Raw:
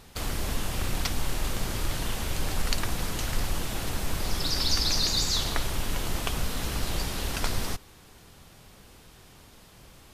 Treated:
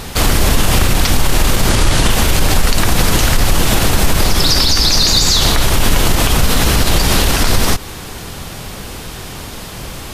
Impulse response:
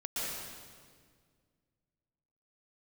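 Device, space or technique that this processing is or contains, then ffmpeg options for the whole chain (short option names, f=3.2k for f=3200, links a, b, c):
loud club master: -filter_complex "[0:a]asettb=1/sr,asplit=3[a][b][c];[a]atrim=end=1.694[d];[b]atrim=start=1.69:end=2.1,asetpts=PTS-STARTPTS,afade=t=in:d=0.004:c=qsin,afade=t=out:st=0.406:d=0.004:c=qsin,lowpass=f=11k:w=0.5412,lowpass=f=11k:w=1.3066[e];[c]atrim=start=2.096[f];[d][e]acrossfade=d=0.004:c1=hsin:c2=qsin[g];[g][f]acrossfade=d=0.004:c1=qsin:c2=hsin,acompressor=threshold=-30dB:ratio=2,asoftclip=type=hard:threshold=-15.5dB,alimiter=level_in=25dB:limit=-1dB:release=50:level=0:latency=1,volume=-1dB"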